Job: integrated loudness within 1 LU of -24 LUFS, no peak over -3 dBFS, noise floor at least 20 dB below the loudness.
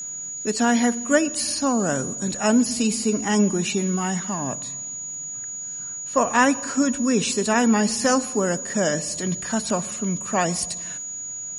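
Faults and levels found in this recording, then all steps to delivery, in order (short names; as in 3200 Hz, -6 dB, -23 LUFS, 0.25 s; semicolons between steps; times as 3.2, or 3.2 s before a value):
ticks 23/s; steady tone 6800 Hz; tone level -30 dBFS; loudness -22.5 LUFS; peak -4.0 dBFS; loudness target -24.0 LUFS
-> de-click; notch 6800 Hz, Q 30; gain -1.5 dB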